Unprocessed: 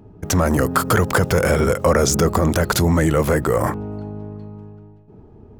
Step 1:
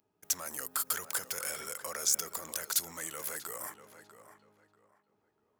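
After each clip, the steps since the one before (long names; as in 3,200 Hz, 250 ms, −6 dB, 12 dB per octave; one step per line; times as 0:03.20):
first difference
tape delay 642 ms, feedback 27%, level −11 dB, low-pass 2,700 Hz
level −6 dB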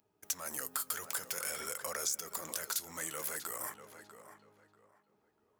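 downward compressor 4 to 1, threshold −34 dBFS, peak gain reduction 10 dB
flanger 0.53 Hz, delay 1.2 ms, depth 7.7 ms, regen −67%
level +5.5 dB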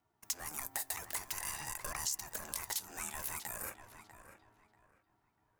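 ring modulation 530 Hz
level +1 dB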